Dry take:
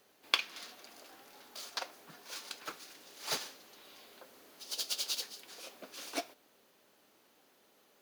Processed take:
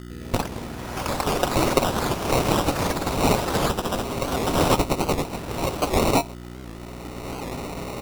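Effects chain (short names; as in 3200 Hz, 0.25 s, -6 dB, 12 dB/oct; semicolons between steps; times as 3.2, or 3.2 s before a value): recorder AGC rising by 19 dB/s; comb 7.4 ms, depth 95%; buzz 60 Hz, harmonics 6, -40 dBFS -2 dB/oct; sample-and-hold 27×; echoes that change speed 0.105 s, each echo +5 st, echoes 3; dynamic EQ 1800 Hz, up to -6 dB, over -44 dBFS, Q 2.7; record warp 78 rpm, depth 160 cents; gain +2 dB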